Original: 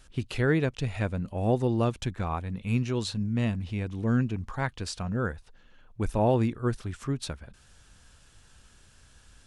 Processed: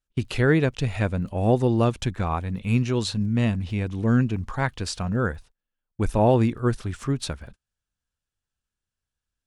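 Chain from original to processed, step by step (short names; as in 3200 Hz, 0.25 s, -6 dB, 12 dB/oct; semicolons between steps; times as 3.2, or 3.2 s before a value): crackle 26/s -52 dBFS; gate -46 dBFS, range -36 dB; gain +5 dB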